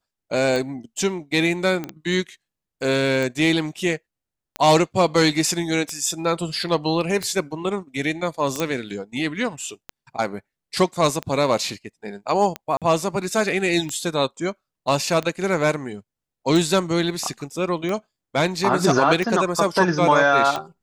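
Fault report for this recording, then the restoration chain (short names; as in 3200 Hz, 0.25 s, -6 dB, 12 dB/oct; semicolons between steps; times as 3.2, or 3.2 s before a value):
tick 45 rpm
1.84 pop -15 dBFS
8.6 pop -9 dBFS
12.77–12.82 gap 47 ms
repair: de-click; interpolate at 12.77, 47 ms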